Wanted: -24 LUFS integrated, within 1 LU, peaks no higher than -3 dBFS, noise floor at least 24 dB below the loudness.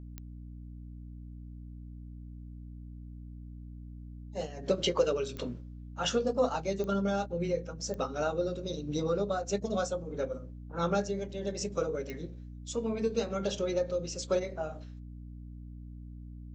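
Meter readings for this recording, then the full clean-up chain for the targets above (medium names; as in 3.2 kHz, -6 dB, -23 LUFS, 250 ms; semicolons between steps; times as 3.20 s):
clicks found 5; hum 60 Hz; highest harmonic 300 Hz; hum level -42 dBFS; loudness -33.0 LUFS; peak level -15.0 dBFS; loudness target -24.0 LUFS
-> de-click; hum notches 60/120/180/240/300 Hz; trim +9 dB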